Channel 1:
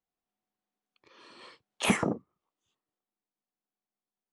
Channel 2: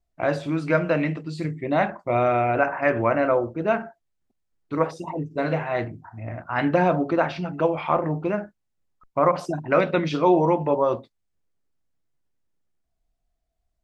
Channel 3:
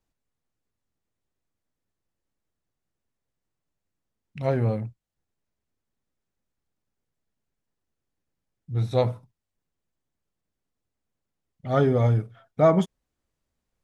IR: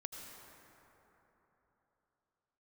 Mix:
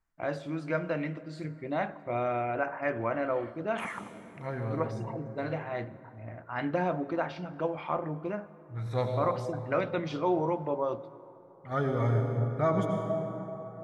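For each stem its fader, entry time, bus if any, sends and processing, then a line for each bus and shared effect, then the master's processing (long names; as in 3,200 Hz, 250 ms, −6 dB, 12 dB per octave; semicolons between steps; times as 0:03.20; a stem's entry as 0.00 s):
+3.0 dB, 1.95 s, bus A, send −16.5 dB, no processing
−11.0 dB, 0.00 s, no bus, send −10.5 dB, no processing
+1.5 dB, 0.00 s, bus A, send −3.5 dB, sample-and-hold tremolo, depth 55%
bus A: 0.0 dB, flat-topped band-pass 1,400 Hz, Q 1; downward compressor 2 to 1, threshold −43 dBFS, peak gain reduction 12 dB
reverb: on, RT60 3.7 s, pre-delay 73 ms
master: notch filter 2,600 Hz, Q 22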